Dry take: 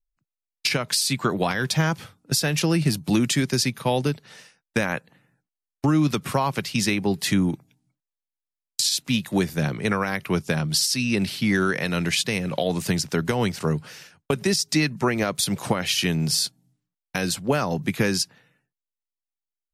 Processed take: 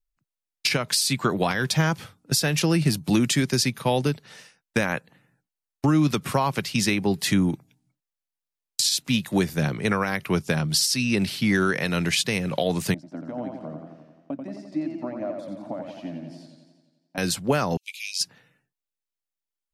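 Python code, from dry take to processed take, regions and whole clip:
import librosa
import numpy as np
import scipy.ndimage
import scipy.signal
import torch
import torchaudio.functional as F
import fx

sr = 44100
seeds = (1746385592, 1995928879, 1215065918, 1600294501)

y = fx.chain(x, sr, fx.double_bandpass(hz=420.0, octaves=1.1),
    fx.echo_warbled(ms=87, feedback_pct=64, rate_hz=2.8, cents=91, wet_db=-5.5), at=(12.94, 17.18))
y = fx.chain(y, sr, fx.steep_highpass(hz=2300.0, slope=96),
    fx.high_shelf(hz=11000.0, db=-11.5), at=(17.77, 18.21))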